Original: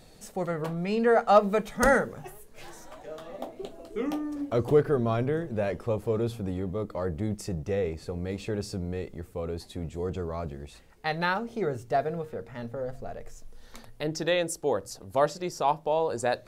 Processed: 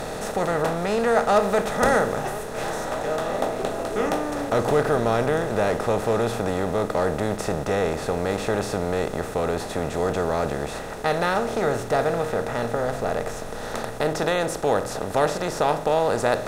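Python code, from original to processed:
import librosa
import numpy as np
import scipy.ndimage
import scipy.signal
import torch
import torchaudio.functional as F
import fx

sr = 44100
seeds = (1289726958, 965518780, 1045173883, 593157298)

y = fx.bin_compress(x, sr, power=0.4)
y = y * 10.0 ** (-2.5 / 20.0)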